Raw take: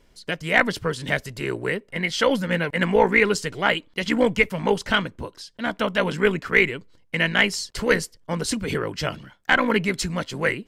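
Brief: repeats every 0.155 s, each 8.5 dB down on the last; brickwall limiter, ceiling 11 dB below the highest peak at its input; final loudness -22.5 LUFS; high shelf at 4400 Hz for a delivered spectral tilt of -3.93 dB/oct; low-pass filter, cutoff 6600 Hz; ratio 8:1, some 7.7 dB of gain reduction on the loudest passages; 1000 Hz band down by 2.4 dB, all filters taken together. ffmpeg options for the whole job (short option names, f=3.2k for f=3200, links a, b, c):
-af "lowpass=6.6k,equalizer=f=1k:t=o:g=-3,highshelf=f=4.4k:g=-3.5,acompressor=threshold=-21dB:ratio=8,alimiter=limit=-18.5dB:level=0:latency=1,aecho=1:1:155|310|465|620:0.376|0.143|0.0543|0.0206,volume=7.5dB"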